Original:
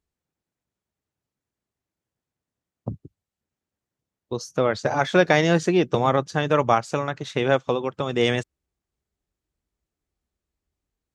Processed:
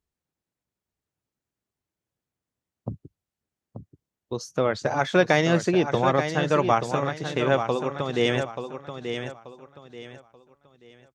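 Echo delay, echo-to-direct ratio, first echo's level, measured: 883 ms, -7.5 dB, -8.0 dB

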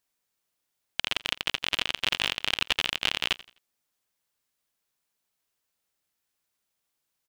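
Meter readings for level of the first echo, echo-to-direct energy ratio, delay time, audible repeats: -20.0 dB, -19.5 dB, 85 ms, 2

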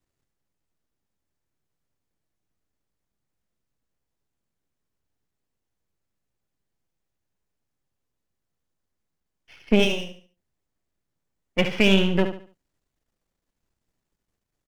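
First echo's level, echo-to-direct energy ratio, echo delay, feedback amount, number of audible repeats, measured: -9.0 dB, -8.5 dB, 72 ms, 32%, 3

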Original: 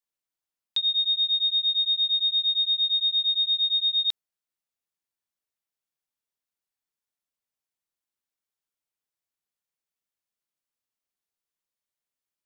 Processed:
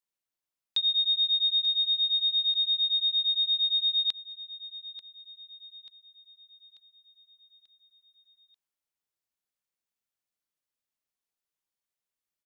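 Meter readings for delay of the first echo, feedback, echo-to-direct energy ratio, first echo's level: 888 ms, 50%, -12.5 dB, -14.0 dB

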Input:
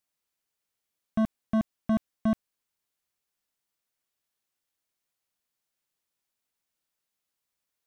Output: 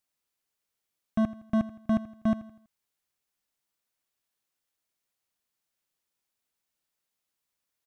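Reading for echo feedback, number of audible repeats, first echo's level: 42%, 3, -16.5 dB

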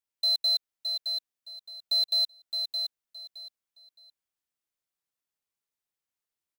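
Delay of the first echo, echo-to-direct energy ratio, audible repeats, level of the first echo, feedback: 617 ms, -6.0 dB, 3, -6.0 dB, 23%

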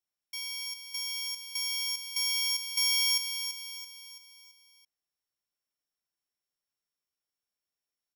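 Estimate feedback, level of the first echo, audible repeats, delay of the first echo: 46%, -8.0 dB, 5, 334 ms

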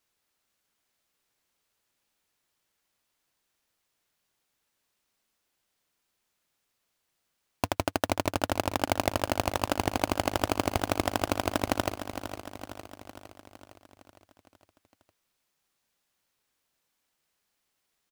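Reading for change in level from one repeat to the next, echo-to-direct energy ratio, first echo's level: -4.5 dB, -8.0 dB, -10.0 dB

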